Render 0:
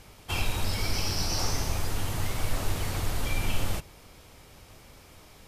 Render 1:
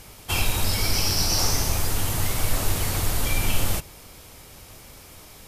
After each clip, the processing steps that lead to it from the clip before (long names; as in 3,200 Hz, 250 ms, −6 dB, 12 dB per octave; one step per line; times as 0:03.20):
high-shelf EQ 7,000 Hz +10 dB
level +4.5 dB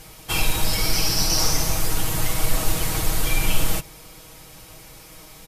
comb filter 6.3 ms, depth 69%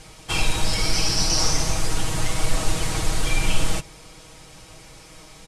low-pass filter 9,300 Hz 24 dB per octave